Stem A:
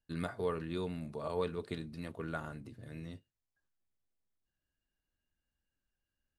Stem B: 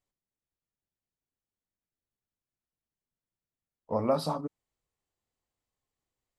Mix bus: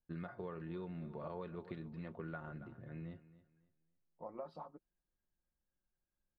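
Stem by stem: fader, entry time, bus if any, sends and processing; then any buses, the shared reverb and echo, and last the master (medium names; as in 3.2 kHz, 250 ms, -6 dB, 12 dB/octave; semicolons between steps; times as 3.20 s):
-2.5 dB, 0.00 s, no send, echo send -18 dB, level-controlled noise filter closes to 1.3 kHz, open at -34.5 dBFS
-15.0 dB, 0.30 s, no send, no echo send, harmonic-percussive split harmonic -14 dB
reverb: none
echo: feedback delay 276 ms, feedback 27%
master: low-pass 2.1 kHz 12 dB/octave; comb 5.6 ms, depth 43%; compression, threshold -41 dBFS, peak gain reduction 8 dB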